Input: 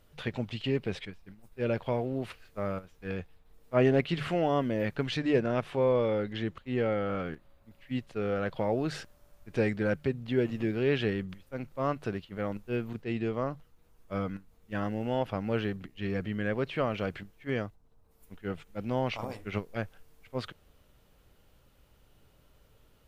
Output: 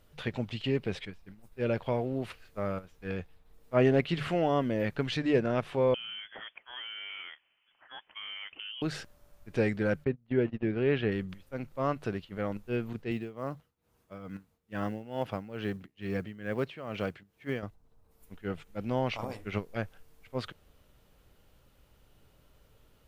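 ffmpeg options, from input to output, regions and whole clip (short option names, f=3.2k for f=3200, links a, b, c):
-filter_complex "[0:a]asettb=1/sr,asplit=3[a][b][c];[a]atrim=end=5.944[d];[b]atrim=start=5.94:end=8.82,asetpts=PTS-STARTPTS,afade=t=in:d=0.004:c=qsin,afade=t=out:st=2.876:d=0.004:c=qsin,highpass=710,acompressor=threshold=-37dB:ratio=10:attack=3.2:release=140:knee=1:detection=peak,lowpass=f=3.1k:t=q:w=0.5098,lowpass=f=3.1k:t=q:w=0.6013,lowpass=f=3.1k:t=q:w=0.9,lowpass=f=3.1k:t=q:w=2.563,afreqshift=-3600[e];[c]atrim=start=8.816[f];[d][e]acrossfade=d=0.004:c1=hsin:c2=qsin[g];[g][f]acrossfade=d=0.004:c1=qsin:c2=hsin,asettb=1/sr,asplit=3[h][i][j];[h]atrim=end=10.044[k];[i]atrim=start=10.04:end=11.12,asetpts=PTS-STARTPTS,afade=t=in:d=0.004:c=qsin,afade=t=out:st=1.076:d=0.004:c=qsin,agate=range=-25dB:threshold=-35dB:ratio=16:release=100:detection=peak,lowpass=2.8k[l];[j]atrim=start=11.116[m];[k][l]acrossfade=d=0.004:c1=hsin:c2=qsin[n];[n][m]acrossfade=d=0.004:c1=qsin:c2=hsin,asettb=1/sr,asplit=3[o][p][q];[o]atrim=end=13.114[r];[p]atrim=start=13.11:end=17.63,asetpts=PTS-STARTPTS,afade=t=in:d=0.004:c=qsin,afade=t=out:st=4.516:d=0.004:c=qsin,highpass=77,tremolo=f=2.3:d=0.81,acrusher=bits=9:mode=log:mix=0:aa=0.000001[s];[q]atrim=start=17.626[t];[r][s]acrossfade=d=0.004:c1=hsin:c2=qsin[u];[u][t]acrossfade=d=0.004:c1=qsin:c2=hsin"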